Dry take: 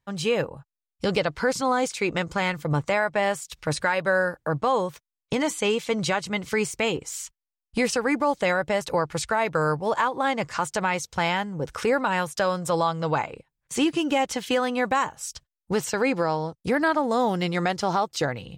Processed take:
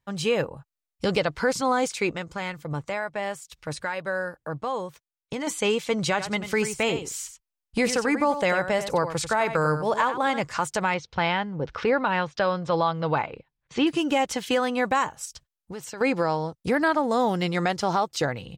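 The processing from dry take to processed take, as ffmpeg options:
-filter_complex "[0:a]asplit=3[a][b][c];[a]afade=t=out:st=6.18:d=0.02[d];[b]aecho=1:1:92:0.316,afade=t=in:st=6.18:d=0.02,afade=t=out:st=10.39:d=0.02[e];[c]afade=t=in:st=10.39:d=0.02[f];[d][e][f]amix=inputs=3:normalize=0,asettb=1/sr,asplit=3[g][h][i];[g]atrim=end=10.944[j];[h]atrim=start=10.94:end=13.87,asetpts=PTS-STARTPTS,afade=t=in:d=0.004:c=qsin,afade=t=out:st=2.926:d=0.004:c=qsin,lowpass=f=4.5k:w=0.5412,lowpass=f=4.5k:w=1.3066[k];[i]atrim=start=13.866[l];[j][k]acrossfade=d=0.004:c1=hsin:c2=qsin[m];[m][l]acrossfade=d=0.004:c1=qsin:c2=hsin,asettb=1/sr,asplit=3[n][o][p];[n]atrim=end=15.254[q];[o]atrim=start=15.25:end=16.01,asetpts=PTS-STARTPTS,afade=t=in:d=0.004:c=qsin,afade=t=out:st=0.756:d=0.004:c=qsin,acompressor=threshold=-39dB:ratio=2.5:attack=3.2:release=140:knee=1:detection=peak[r];[p]atrim=start=16.006[s];[q][r]acrossfade=d=0.004:c1=hsin:c2=qsin[t];[t][s]acrossfade=d=0.004:c1=qsin:c2=hsin,asplit=3[u][v][w];[u]atrim=end=2.122[x];[v]atrim=start=2.118:end=5.472,asetpts=PTS-STARTPTS,volume=-6.5dB[y];[w]atrim=start=5.468[z];[x][y]acrossfade=d=0.004:c1=hsin:c2=hsin[aa];[aa][z]acrossfade=d=0.004:c1=hsin:c2=hsin"

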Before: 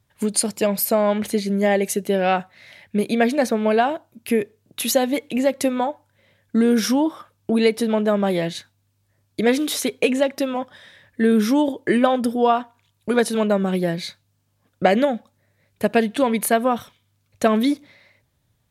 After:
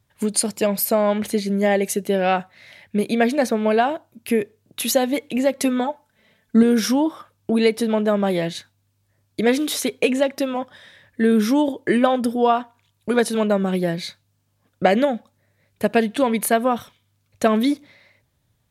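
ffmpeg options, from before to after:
-filter_complex "[0:a]asettb=1/sr,asplit=3[a][b][c];[a]atrim=end=5.584[d];[b]atrim=start=5.58:end=6.63,asetpts=PTS-STARTPTS,afade=t=in:d=0.004:c=qsin,afade=t=out:st=1.046:d=0.004:c=qsin,aecho=1:1:4.6:0.65,atrim=end_sample=46305[e];[c]atrim=start=6.626[f];[d][e]acrossfade=d=0.004:c1=hsin:c2=qsin[g];[g][f]acrossfade=d=0.004:c1=qsin:c2=hsin"

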